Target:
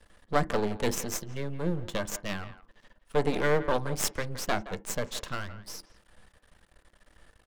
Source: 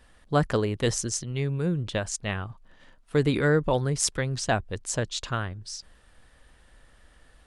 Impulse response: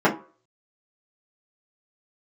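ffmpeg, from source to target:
-filter_complex "[0:a]aeval=exprs='max(val(0),0)':c=same,asplit=2[a][b];[b]adelay=170,highpass=300,lowpass=3.4k,asoftclip=type=hard:threshold=-16.5dB,volume=-14dB[c];[a][c]amix=inputs=2:normalize=0,asplit=2[d][e];[1:a]atrim=start_sample=2205,afade=t=out:st=0.14:d=0.01,atrim=end_sample=6615[f];[e][f]afir=irnorm=-1:irlink=0,volume=-29.5dB[g];[d][g]amix=inputs=2:normalize=0"

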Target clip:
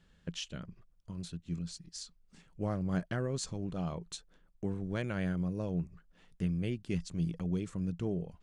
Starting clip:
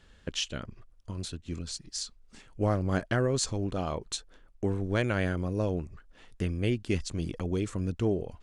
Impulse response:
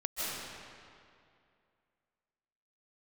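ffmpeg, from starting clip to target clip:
-af "equalizer=f=170:t=o:w=0.35:g=15,volume=-9dB"

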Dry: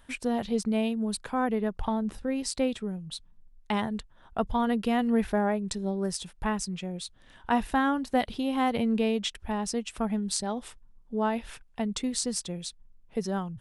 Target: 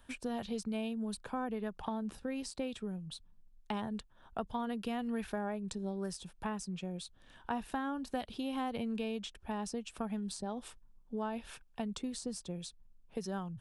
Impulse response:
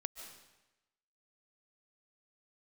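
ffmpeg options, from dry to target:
-filter_complex "[0:a]bandreject=f=2k:w=9.2,acrossover=split=110|1100[a][b][c];[a]acompressor=threshold=-51dB:ratio=4[d];[b]acompressor=threshold=-32dB:ratio=4[e];[c]acompressor=threshold=-41dB:ratio=4[f];[d][e][f]amix=inputs=3:normalize=0,volume=-4dB"

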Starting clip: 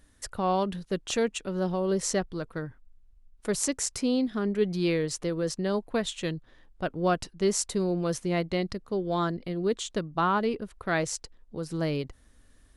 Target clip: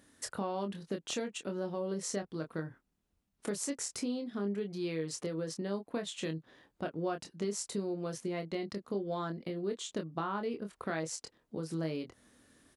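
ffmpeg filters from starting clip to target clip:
-filter_complex "[0:a]acompressor=threshold=-37dB:ratio=4,highpass=190,lowshelf=f=350:g=5,asplit=2[a][b];[b]adelay=25,volume=-6dB[c];[a][c]amix=inputs=2:normalize=0"

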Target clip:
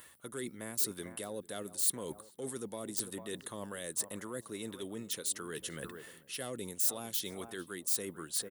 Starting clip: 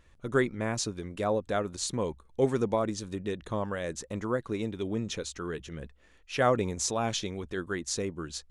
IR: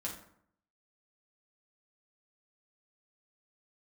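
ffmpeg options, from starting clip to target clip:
-filter_complex "[0:a]asoftclip=type=tanh:threshold=-14dB,tiltshelf=f=790:g=-6,acrossover=split=3500[a][b];[a]highpass=140[c];[b]volume=28.5dB,asoftclip=hard,volume=-28.5dB[d];[c][d]amix=inputs=2:normalize=0,asplit=2[e][f];[f]adelay=446,lowpass=f=980:p=1,volume=-17dB,asplit=2[g][h];[h]adelay=446,lowpass=f=980:p=1,volume=0.42,asplit=2[i][j];[j]adelay=446,lowpass=f=980:p=1,volume=0.42,asplit=2[k][l];[l]adelay=446,lowpass=f=980:p=1,volume=0.42[m];[e][g][i][k][m]amix=inputs=5:normalize=0,acrossover=split=460|3000[n][o][p];[o]acompressor=threshold=-42dB:ratio=6[q];[n][q][p]amix=inputs=3:normalize=0,bandreject=f=2.4k:w=7.3,areverse,acompressor=threshold=-48dB:ratio=5,areverse,aexciter=amount=8:drive=6.7:freq=8.9k,volume=8dB"

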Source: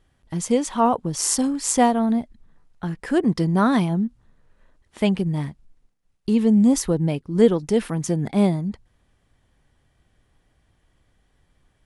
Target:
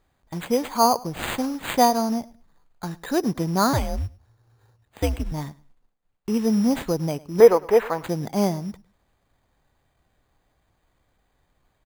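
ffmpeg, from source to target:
-filter_complex "[0:a]acrusher=bits=7:mode=log:mix=0:aa=0.000001,equalizer=f=860:t=o:w=2:g=8,asettb=1/sr,asplit=3[a][b][c];[a]atrim=end=1.224[d];[b]atrim=start=1.22:end=1.71,asetpts=PTS-STARTPTS,afade=t=in:d=0.004:c=qsin,afade=t=out:st=0.486:d=0.004:c=qsin,aeval=exprs='sgn(val(0))*max(abs(val(0))-0.00841,0)':c=same[e];[c]atrim=start=1.706[f];[d][e]acrossfade=d=0.004:c1=hsin:c2=qsin[g];[g][f]acrossfade=d=0.004:c1=qsin:c2=hsin,asettb=1/sr,asplit=3[h][i][j];[h]atrim=end=3.734[k];[i]atrim=start=3.73:end=5.32,asetpts=PTS-STARTPTS,afade=t=in:d=0.004:c=qsin,afade=t=out:st=1.586:d=0.004:c=qsin,afreqshift=-130[l];[j]atrim=start=5.316[m];[k][l]acrossfade=d=0.004:c1=hsin:c2=qsin[n];[n][m]acrossfade=d=0.004:c1=qsin:c2=hsin,acrusher=samples=8:mix=1:aa=0.000001,asettb=1/sr,asplit=3[o][p][q];[o]atrim=end=7.404[r];[p]atrim=start=7.4:end=8.03,asetpts=PTS-STARTPTS,afade=t=in:d=0.004:c=qsin,afade=t=out:st=0.626:d=0.004:c=qsin,equalizer=f=125:t=o:w=1:g=-11,equalizer=f=250:t=o:w=1:g=-6,equalizer=f=500:t=o:w=1:g=8,equalizer=f=1k:t=o:w=1:g=8,equalizer=f=2k:t=o:w=1:g=8,equalizer=f=4k:t=o:w=1:g=-5,equalizer=f=8k:t=o:w=1:g=-7[s];[q]atrim=start=8.026[t];[r][s]acrossfade=d=0.004:c1=hsin:c2=qsin[u];[u][t]acrossfade=d=0.004:c1=qsin:c2=hsin,asplit=2[v][w];[w]aecho=0:1:104|208:0.0841|0.0177[x];[v][x]amix=inputs=2:normalize=0,volume=-6dB"

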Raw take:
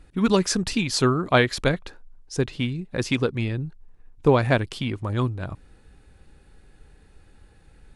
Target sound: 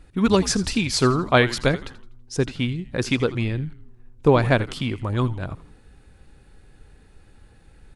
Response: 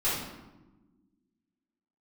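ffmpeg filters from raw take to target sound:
-filter_complex "[0:a]asplit=5[a][b][c][d][e];[b]adelay=82,afreqshift=-130,volume=-15.5dB[f];[c]adelay=164,afreqshift=-260,volume=-23.5dB[g];[d]adelay=246,afreqshift=-390,volume=-31.4dB[h];[e]adelay=328,afreqshift=-520,volume=-39.4dB[i];[a][f][g][h][i]amix=inputs=5:normalize=0,volume=1.5dB"

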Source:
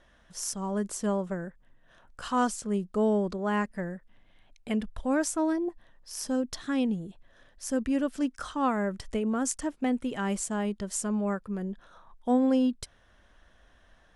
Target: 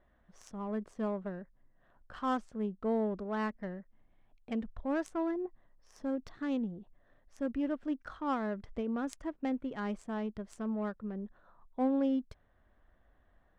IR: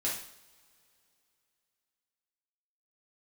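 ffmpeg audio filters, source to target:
-af "adynamicsmooth=sensitivity=2.5:basefreq=1.6k,asetrate=45938,aresample=44100,volume=-6dB"

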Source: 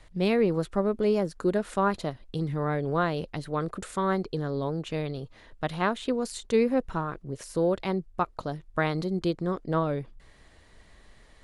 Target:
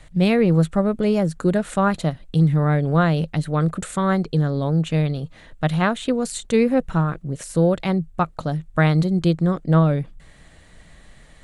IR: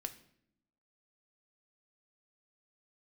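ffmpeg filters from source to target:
-af "equalizer=f=160:t=o:w=0.33:g=9,equalizer=f=400:t=o:w=0.33:g=-6,equalizer=f=1k:t=o:w=0.33:g=-5,equalizer=f=5k:t=o:w=0.33:g=-5,equalizer=f=8k:t=o:w=0.33:g=5,volume=7dB"

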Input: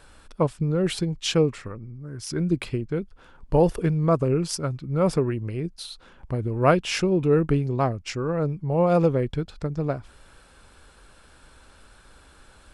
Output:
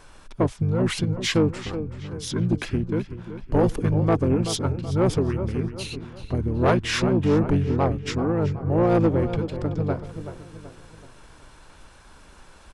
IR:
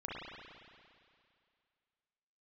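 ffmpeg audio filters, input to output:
-filter_complex "[0:a]asplit=2[a][b];[b]adelay=379,lowpass=f=4.3k:p=1,volume=-12dB,asplit=2[c][d];[d]adelay=379,lowpass=f=4.3k:p=1,volume=0.45,asplit=2[e][f];[f]adelay=379,lowpass=f=4.3k:p=1,volume=0.45,asplit=2[g][h];[h]adelay=379,lowpass=f=4.3k:p=1,volume=0.45,asplit=2[i][j];[j]adelay=379,lowpass=f=4.3k:p=1,volume=0.45[k];[a][c][e][g][i][k]amix=inputs=6:normalize=0,asplit=2[l][m];[m]asetrate=29433,aresample=44100,atempo=1.49831,volume=-1dB[n];[l][n]amix=inputs=2:normalize=0,asoftclip=type=tanh:threshold=-12.5dB"

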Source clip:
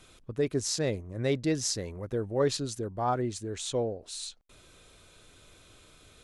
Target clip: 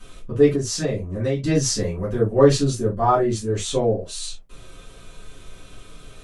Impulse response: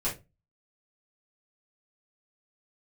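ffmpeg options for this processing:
-filter_complex "[1:a]atrim=start_sample=2205,atrim=end_sample=4410,asetrate=48510,aresample=44100[a];[0:a][a]afir=irnorm=-1:irlink=0,asettb=1/sr,asplit=3[b][c][d];[b]atrim=end=0.554[e];[c]atrim=start=0.55:end=1.44,asetpts=PTS-STARTPTS,afade=t=in:d=0.004:c=qsin,afade=t=out:st=0.886:d=0.004:c=qsin,acompressor=threshold=-25dB:ratio=4[f];[d]atrim=start=1.436[g];[e][f]acrossfade=d=0.004:c1=hsin:c2=qsin[h];[h][g]acrossfade=d=0.004:c1=qsin:c2=hsin,volume=4dB"

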